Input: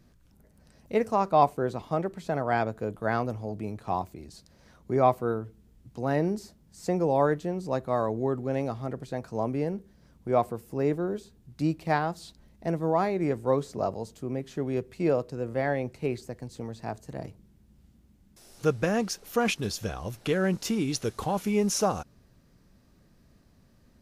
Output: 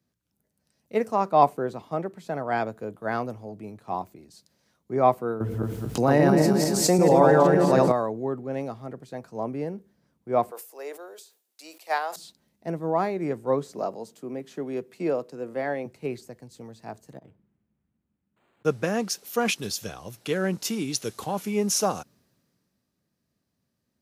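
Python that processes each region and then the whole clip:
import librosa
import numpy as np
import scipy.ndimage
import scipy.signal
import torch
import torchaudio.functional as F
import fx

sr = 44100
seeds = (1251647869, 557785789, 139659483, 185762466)

y = fx.chain(x, sr, fx.reverse_delay_fb(ms=113, feedback_pct=53, wet_db=0.0),
    fx.env_flatten(amount_pct=70), at=(5.4, 7.92))
y = fx.chain(y, sr, fx.highpass(hz=500.0, slope=24),
    fx.high_shelf(hz=6300.0, db=7.0),
    fx.sustainer(db_per_s=130.0), at=(10.51, 12.16))
y = fx.chain(y, sr, fx.highpass(hz=170.0, slope=12),
    fx.band_squash(depth_pct=40), at=(13.75, 15.86))
y = fx.chain(y, sr, fx.auto_swell(attack_ms=110.0),
    fx.resample_linear(factor=8), at=(17.15, 18.65))
y = scipy.signal.sosfilt(scipy.signal.butter(2, 140.0, 'highpass', fs=sr, output='sos'), y)
y = fx.high_shelf(y, sr, hz=11000.0, db=5.5)
y = fx.band_widen(y, sr, depth_pct=40)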